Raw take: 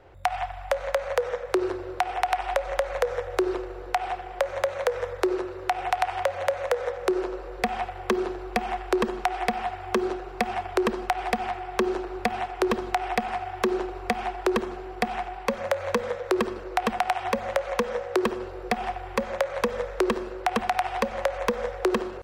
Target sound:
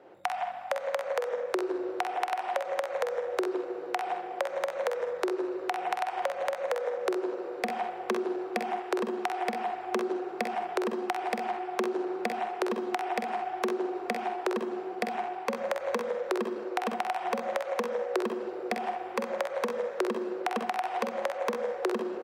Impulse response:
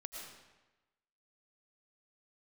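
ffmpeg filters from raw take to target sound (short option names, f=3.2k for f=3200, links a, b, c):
-filter_complex "[0:a]highpass=f=210:w=0.5412,highpass=f=210:w=1.3066,tiltshelf=f=790:g=4.5,acompressor=threshold=-26dB:ratio=6,aecho=1:1:47|64:0.422|0.335,asplit=2[a][b];[1:a]atrim=start_sample=2205,atrim=end_sample=3969[c];[b][c]afir=irnorm=-1:irlink=0,volume=-10dB[d];[a][d]amix=inputs=2:normalize=0,volume=-2.5dB"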